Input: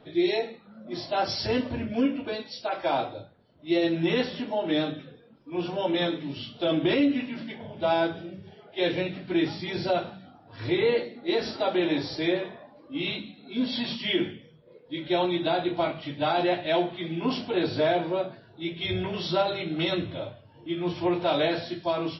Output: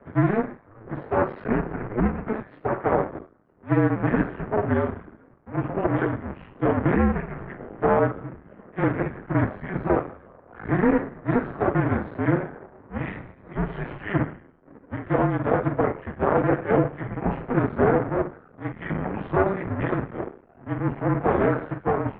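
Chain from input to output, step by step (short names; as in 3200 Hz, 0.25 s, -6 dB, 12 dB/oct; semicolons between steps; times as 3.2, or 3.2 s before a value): cycle switcher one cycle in 2, muted; mistuned SSB -210 Hz 320–2000 Hz; gain +8 dB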